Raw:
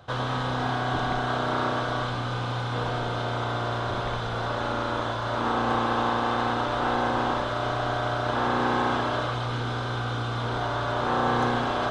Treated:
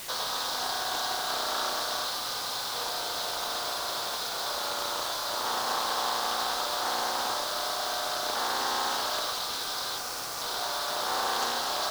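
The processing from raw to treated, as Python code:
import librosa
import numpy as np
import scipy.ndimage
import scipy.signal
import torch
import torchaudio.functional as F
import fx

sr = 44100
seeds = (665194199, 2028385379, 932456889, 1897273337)

y = fx.median_filter(x, sr, points=15, at=(9.97, 10.42))
y = scipy.signal.sosfilt(scipy.signal.butter(2, 650.0, 'highpass', fs=sr, output='sos'), y)
y = fx.high_shelf_res(y, sr, hz=3500.0, db=11.0, q=3.0)
y = fx.quant_dither(y, sr, seeds[0], bits=6, dither='triangular')
y = fx.doppler_dist(y, sr, depth_ms=0.23)
y = y * 10.0 ** (-2.5 / 20.0)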